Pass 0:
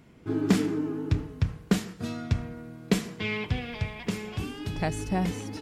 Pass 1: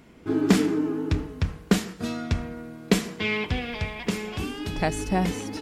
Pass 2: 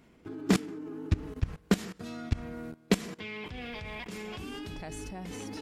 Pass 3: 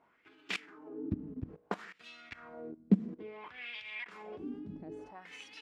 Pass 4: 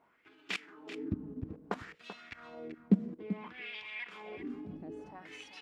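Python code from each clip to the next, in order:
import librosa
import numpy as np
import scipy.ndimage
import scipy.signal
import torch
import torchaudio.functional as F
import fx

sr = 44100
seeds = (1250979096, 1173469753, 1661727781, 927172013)

y1 = fx.peak_eq(x, sr, hz=120.0, db=-10.0, octaves=0.71)
y1 = y1 * librosa.db_to_amplitude(5.0)
y2 = fx.level_steps(y1, sr, step_db=20)
y3 = fx.add_hum(y2, sr, base_hz=50, snr_db=28)
y3 = fx.wah_lfo(y3, sr, hz=0.59, low_hz=210.0, high_hz=2900.0, q=2.7)
y3 = y3 * librosa.db_to_amplitude(3.5)
y4 = y3 + 10.0 ** (-11.5 / 20.0) * np.pad(y3, (int(386 * sr / 1000.0), 0))[:len(y3)]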